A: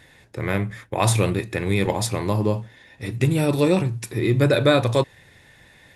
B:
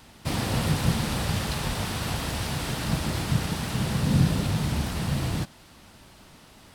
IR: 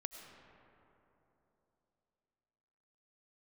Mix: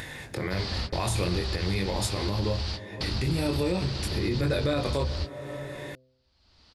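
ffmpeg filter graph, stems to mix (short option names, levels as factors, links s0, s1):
-filter_complex "[0:a]flanger=delay=20:depth=3.5:speed=0.45,volume=0.631,asplit=3[s0][s1][s2];[s1]volume=0.376[s3];[1:a]lowpass=f=4600:t=q:w=5.2,lowshelf=f=100:t=q:w=3:g=7.5,alimiter=limit=0.211:level=0:latency=1,adelay=250,volume=0.355[s4];[s2]apad=whole_len=308336[s5];[s4][s5]sidechaingate=range=0.00631:threshold=0.00316:ratio=16:detection=peak[s6];[2:a]atrim=start_sample=2205[s7];[s3][s7]afir=irnorm=-1:irlink=0[s8];[s0][s6][s8]amix=inputs=3:normalize=0,bandreject=f=129.1:t=h:w=4,bandreject=f=258.2:t=h:w=4,bandreject=f=387.3:t=h:w=4,bandreject=f=516.4:t=h:w=4,bandreject=f=645.5:t=h:w=4,acompressor=mode=upward:threshold=0.0562:ratio=2.5,alimiter=limit=0.133:level=0:latency=1:release=73"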